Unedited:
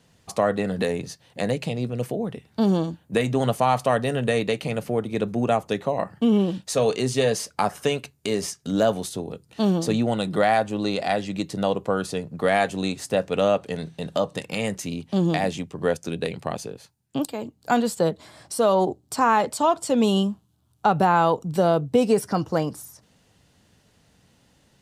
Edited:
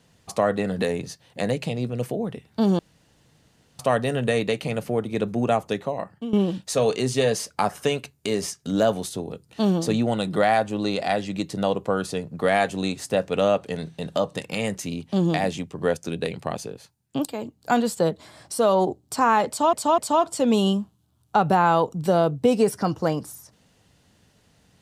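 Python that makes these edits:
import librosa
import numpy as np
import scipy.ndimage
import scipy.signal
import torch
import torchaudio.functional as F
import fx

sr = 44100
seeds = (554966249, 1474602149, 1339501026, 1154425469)

y = fx.edit(x, sr, fx.room_tone_fill(start_s=2.79, length_s=1.0),
    fx.fade_out_to(start_s=5.66, length_s=0.67, floor_db=-14.5),
    fx.repeat(start_s=19.48, length_s=0.25, count=3), tone=tone)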